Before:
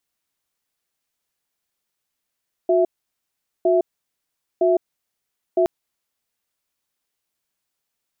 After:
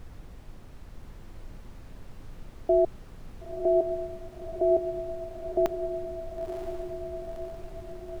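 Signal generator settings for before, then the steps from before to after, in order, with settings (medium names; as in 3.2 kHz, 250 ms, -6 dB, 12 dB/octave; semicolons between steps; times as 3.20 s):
cadence 363 Hz, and 661 Hz, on 0.16 s, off 0.80 s, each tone -16.5 dBFS 2.97 s
bass shelf 500 Hz -7.5 dB; added noise brown -43 dBFS; on a send: echo that smears into a reverb 979 ms, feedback 56%, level -6 dB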